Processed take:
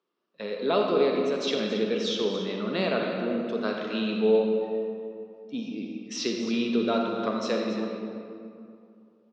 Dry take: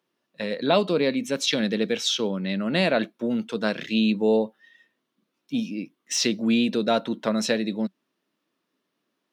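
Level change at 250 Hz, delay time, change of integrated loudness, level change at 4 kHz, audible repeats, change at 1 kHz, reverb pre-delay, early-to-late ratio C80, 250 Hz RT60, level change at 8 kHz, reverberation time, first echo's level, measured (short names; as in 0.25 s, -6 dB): -4.0 dB, 0.278 s, -3.0 dB, -5.5 dB, 1, -1.5 dB, 38 ms, 2.5 dB, 2.7 s, -11.0 dB, 2.5 s, -12.0 dB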